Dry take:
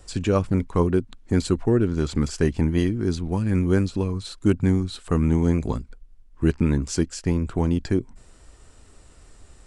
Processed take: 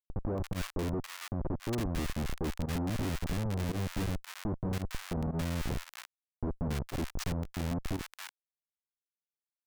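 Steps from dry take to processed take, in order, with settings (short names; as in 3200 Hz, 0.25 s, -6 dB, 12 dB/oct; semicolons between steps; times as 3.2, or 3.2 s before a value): Schmitt trigger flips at -24 dBFS; bands offset in time lows, highs 0.28 s, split 1100 Hz; pump 113 bpm, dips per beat 1, -19 dB, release 64 ms; gain -8 dB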